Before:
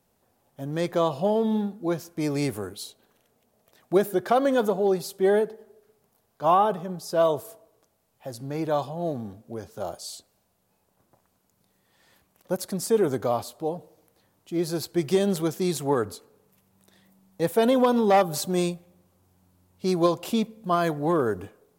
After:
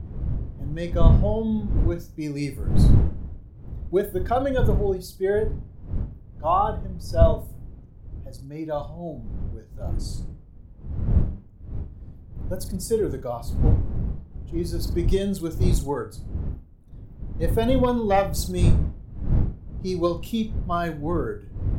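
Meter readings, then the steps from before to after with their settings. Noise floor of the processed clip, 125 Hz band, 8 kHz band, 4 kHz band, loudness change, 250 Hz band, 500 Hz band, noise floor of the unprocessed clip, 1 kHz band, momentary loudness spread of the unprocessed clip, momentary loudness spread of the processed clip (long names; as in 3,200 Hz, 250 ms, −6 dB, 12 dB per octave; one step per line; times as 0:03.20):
−45 dBFS, +11.0 dB, −3.0 dB, −3.0 dB, 0.0 dB, 0.0 dB, −2.0 dB, −70 dBFS, −2.0 dB, 15 LU, 18 LU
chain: spectral dynamics exaggerated over time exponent 1.5
wind on the microphone 90 Hz −25 dBFS
flutter between parallel walls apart 7 metres, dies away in 0.26 s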